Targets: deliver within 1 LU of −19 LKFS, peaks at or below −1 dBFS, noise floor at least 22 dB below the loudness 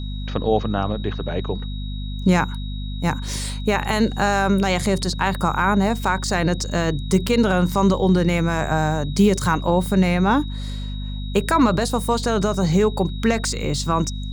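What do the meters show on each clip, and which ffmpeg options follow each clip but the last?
mains hum 50 Hz; hum harmonics up to 250 Hz; level of the hum −26 dBFS; interfering tone 3,800 Hz; level of the tone −39 dBFS; integrated loudness −21.0 LKFS; sample peak −4.5 dBFS; target loudness −19.0 LKFS
→ -af "bandreject=frequency=50:width_type=h:width=4,bandreject=frequency=100:width_type=h:width=4,bandreject=frequency=150:width_type=h:width=4,bandreject=frequency=200:width_type=h:width=4,bandreject=frequency=250:width_type=h:width=4"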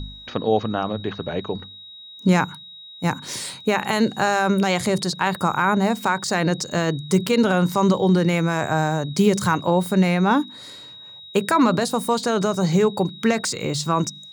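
mains hum none found; interfering tone 3,800 Hz; level of the tone −39 dBFS
→ -af "bandreject=frequency=3800:width=30"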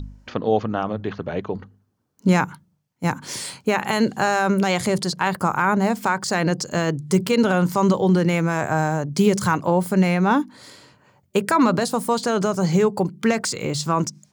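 interfering tone none found; integrated loudness −21.0 LKFS; sample peak −4.5 dBFS; target loudness −19.0 LKFS
→ -af "volume=2dB"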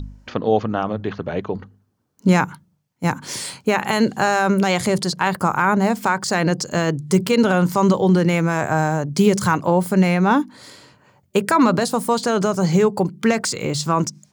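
integrated loudness −19.0 LKFS; sample peak −2.5 dBFS; background noise floor −64 dBFS

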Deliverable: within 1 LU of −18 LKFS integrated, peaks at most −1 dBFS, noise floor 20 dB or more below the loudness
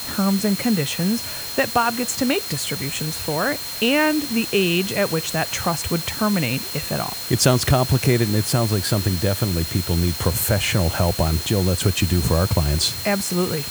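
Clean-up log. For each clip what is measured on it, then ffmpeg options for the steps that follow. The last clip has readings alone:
interfering tone 4,200 Hz; level of the tone −32 dBFS; background noise floor −30 dBFS; target noise floor −41 dBFS; integrated loudness −20.5 LKFS; sample peak −2.5 dBFS; target loudness −18.0 LKFS
→ -af "bandreject=frequency=4200:width=30"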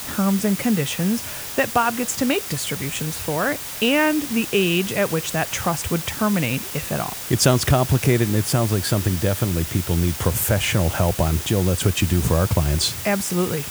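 interfering tone none found; background noise floor −32 dBFS; target noise floor −41 dBFS
→ -af "afftdn=noise_reduction=9:noise_floor=-32"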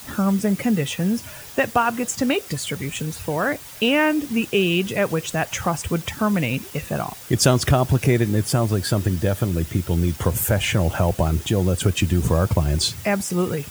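background noise floor −39 dBFS; target noise floor −42 dBFS
→ -af "afftdn=noise_reduction=6:noise_floor=-39"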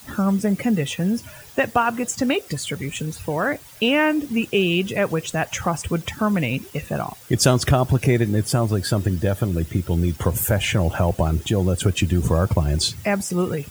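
background noise floor −44 dBFS; integrated loudness −21.5 LKFS; sample peak −3.5 dBFS; target loudness −18.0 LKFS
→ -af "volume=3.5dB,alimiter=limit=-1dB:level=0:latency=1"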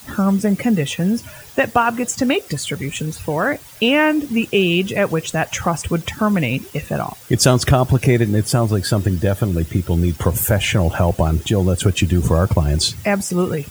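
integrated loudness −18.0 LKFS; sample peak −1.0 dBFS; background noise floor −40 dBFS

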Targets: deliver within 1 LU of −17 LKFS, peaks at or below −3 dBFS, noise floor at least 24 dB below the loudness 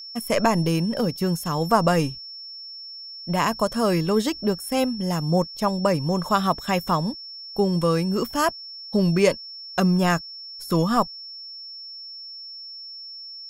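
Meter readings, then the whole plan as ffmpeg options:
interfering tone 5,400 Hz; level of the tone −36 dBFS; integrated loudness −23.0 LKFS; sample peak −5.5 dBFS; target loudness −17.0 LKFS
→ -af "bandreject=frequency=5400:width=30"
-af "volume=6dB,alimiter=limit=-3dB:level=0:latency=1"

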